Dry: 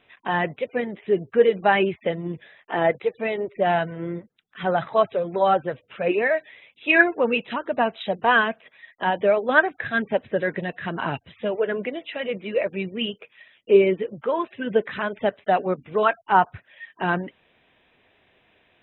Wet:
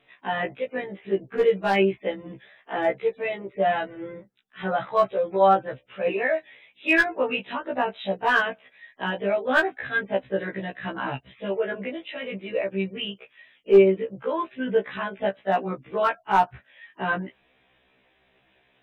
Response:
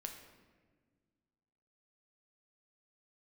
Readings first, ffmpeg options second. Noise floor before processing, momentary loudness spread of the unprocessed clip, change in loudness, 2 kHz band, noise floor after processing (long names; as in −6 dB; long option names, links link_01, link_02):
−63 dBFS, 11 LU, −2.0 dB, −2.5 dB, −65 dBFS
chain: -af "aeval=exprs='clip(val(0),-1,0.355)':channel_layout=same,afftfilt=real='re*1.73*eq(mod(b,3),0)':imag='im*1.73*eq(mod(b,3),0)':win_size=2048:overlap=0.75"